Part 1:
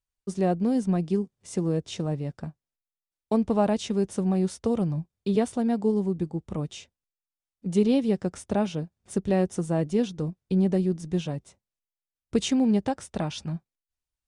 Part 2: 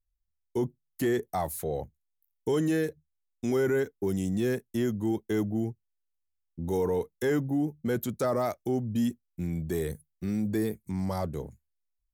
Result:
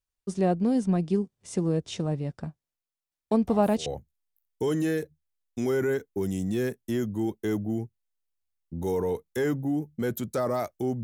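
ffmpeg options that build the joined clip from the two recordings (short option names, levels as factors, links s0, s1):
-filter_complex "[1:a]asplit=2[s0][s1];[0:a]apad=whole_dur=11.03,atrim=end=11.03,atrim=end=3.862[s2];[s1]atrim=start=1.718:end=8.89[s3];[s0]atrim=start=1.17:end=1.72,asetpts=PTS-STARTPTS,volume=0.211,afade=t=in:d=0.004:c=hsin,afade=t=out:st=0.546:d=0.004:c=hsin,adelay=3310[s4];[s2][s3]acrossfade=d=0.004:c1=hsin:c2=hsin[s5];[s5][s4]amix=inputs=2:normalize=0"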